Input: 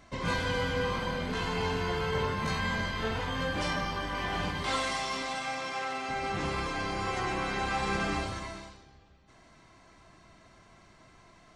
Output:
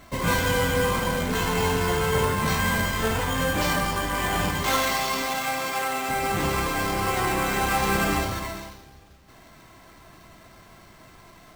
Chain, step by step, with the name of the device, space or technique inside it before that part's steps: early companding sampler (sample-rate reducer 10000 Hz, jitter 0%; companded quantiser 6-bit); gain +7.5 dB

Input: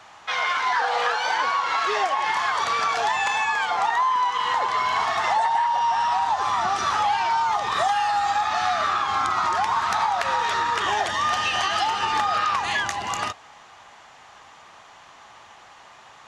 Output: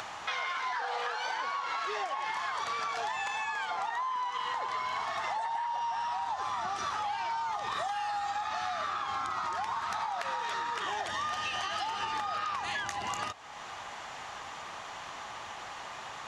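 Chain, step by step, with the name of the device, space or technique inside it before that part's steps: 10.07–10.96 HPF 120 Hz; upward and downward compression (upward compressor, threshold -35 dBFS; compressor 6:1, threshold -32 dBFS, peak gain reduction 13 dB)

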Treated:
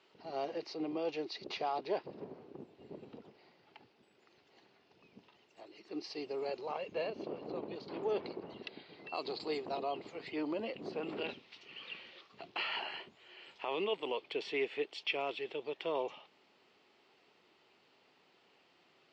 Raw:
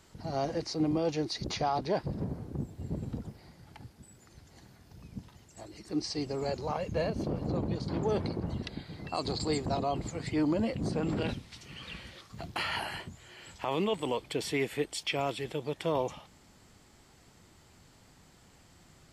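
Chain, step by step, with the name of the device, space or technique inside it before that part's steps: phone earpiece (speaker cabinet 380–4500 Hz, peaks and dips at 400 Hz +6 dB, 1600 Hz -3 dB, 2700 Hz +7 dB); gain -5.5 dB

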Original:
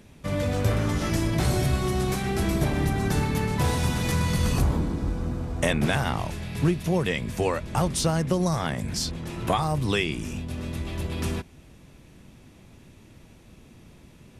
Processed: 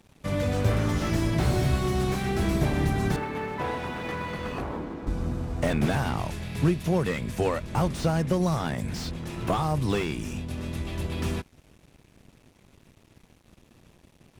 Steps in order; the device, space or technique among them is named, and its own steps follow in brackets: 3.16–5.07 three-band isolator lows -15 dB, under 270 Hz, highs -22 dB, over 2900 Hz; early transistor amplifier (crossover distortion -52 dBFS; slew limiter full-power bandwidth 69 Hz)

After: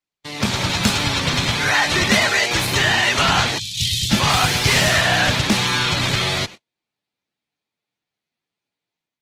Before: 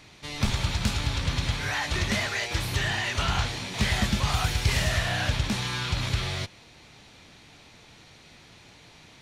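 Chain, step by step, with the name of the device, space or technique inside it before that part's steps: 3.58–4.11 elliptic band-stop 120–3300 Hz, stop band 50 dB; video call (HPF 160 Hz 12 dB/oct; AGC gain up to 5 dB; gate -39 dBFS, range -45 dB; gain +7 dB; Opus 16 kbps 48000 Hz)

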